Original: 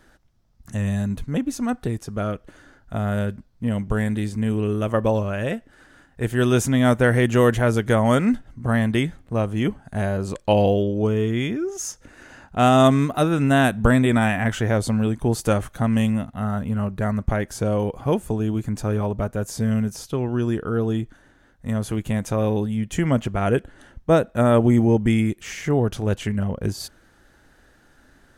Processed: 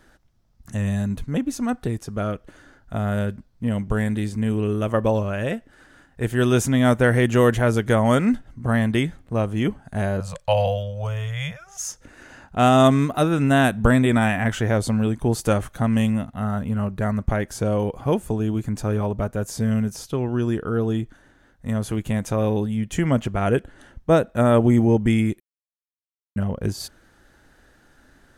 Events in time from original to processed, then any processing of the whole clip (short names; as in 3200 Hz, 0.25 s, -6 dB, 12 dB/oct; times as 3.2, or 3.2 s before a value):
10.2–11.89 elliptic band-stop 170–530 Hz
25.4–26.36 mute